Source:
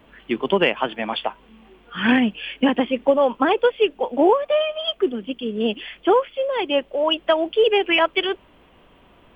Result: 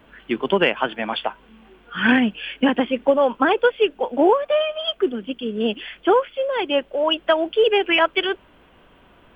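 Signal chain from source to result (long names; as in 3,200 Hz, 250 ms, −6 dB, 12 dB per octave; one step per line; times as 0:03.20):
parametric band 1,500 Hz +6 dB 0.28 octaves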